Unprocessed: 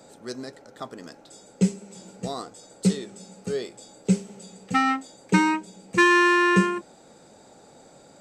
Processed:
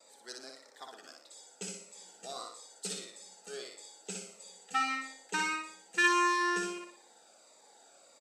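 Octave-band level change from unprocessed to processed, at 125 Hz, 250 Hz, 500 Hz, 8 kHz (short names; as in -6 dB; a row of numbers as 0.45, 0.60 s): under -25 dB, -18.0 dB, -14.0 dB, -2.5 dB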